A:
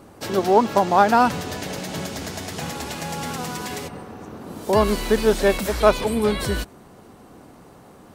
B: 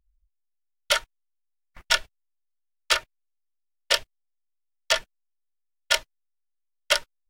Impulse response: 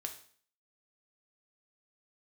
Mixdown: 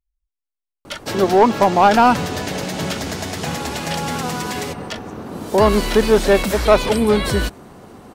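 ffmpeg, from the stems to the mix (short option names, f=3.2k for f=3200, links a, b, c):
-filter_complex "[0:a]acontrast=89,adelay=850,volume=-1.5dB[a];[1:a]volume=-8dB[b];[a][b]amix=inputs=2:normalize=0,highshelf=f=8.5k:g=-4.5"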